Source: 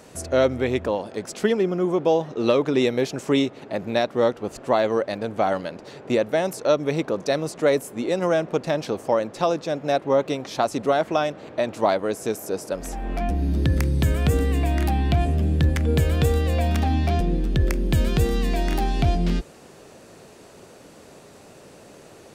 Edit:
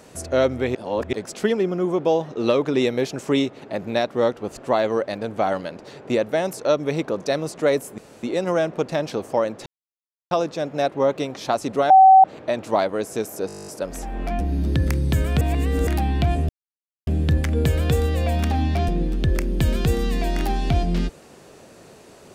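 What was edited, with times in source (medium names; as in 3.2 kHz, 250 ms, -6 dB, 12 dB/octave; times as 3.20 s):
0.75–1.13 s: reverse
7.98 s: insert room tone 0.25 s
9.41 s: insert silence 0.65 s
11.00–11.34 s: bleep 764 Hz -6.5 dBFS
12.57 s: stutter 0.02 s, 11 plays
14.31–14.77 s: reverse
15.39 s: insert silence 0.58 s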